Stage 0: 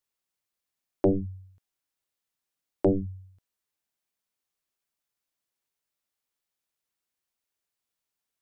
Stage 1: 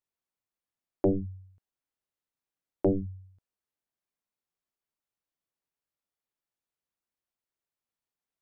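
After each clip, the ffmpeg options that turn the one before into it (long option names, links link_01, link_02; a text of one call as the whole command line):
ffmpeg -i in.wav -af "highshelf=frequency=2000:gain=-9.5,volume=-2dB" out.wav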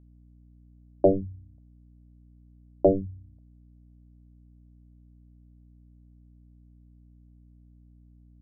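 ffmpeg -i in.wav -af "lowpass=frequency=640:width_type=q:width=4.9,aeval=exprs='val(0)+0.00224*(sin(2*PI*60*n/s)+sin(2*PI*2*60*n/s)/2+sin(2*PI*3*60*n/s)/3+sin(2*PI*4*60*n/s)/4+sin(2*PI*5*60*n/s)/5)':channel_layout=same" out.wav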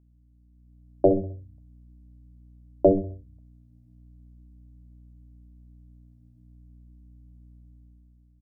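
ffmpeg -i in.wav -af "flanger=delay=0.9:depth=7.9:regen=-75:speed=0.4:shape=triangular,dynaudnorm=framelen=120:gausssize=11:maxgain=9dB,aecho=1:1:65|130|195|260:0.188|0.081|0.0348|0.015,volume=-2dB" out.wav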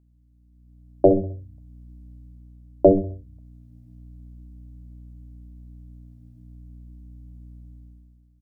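ffmpeg -i in.wav -af "dynaudnorm=framelen=100:gausssize=11:maxgain=7.5dB" out.wav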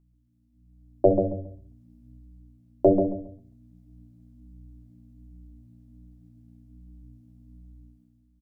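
ffmpeg -i in.wav -af "flanger=delay=5.7:depth=3.4:regen=-35:speed=1.3:shape=sinusoidal,aecho=1:1:137|274|411:0.473|0.114|0.0273" out.wav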